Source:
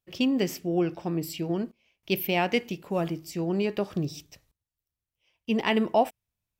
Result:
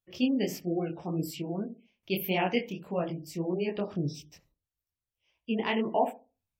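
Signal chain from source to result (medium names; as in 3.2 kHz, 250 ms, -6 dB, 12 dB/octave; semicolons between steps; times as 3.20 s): filtered feedback delay 66 ms, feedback 29%, low-pass 880 Hz, level -11.5 dB; spectral gate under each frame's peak -30 dB strong; detune thickener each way 58 cents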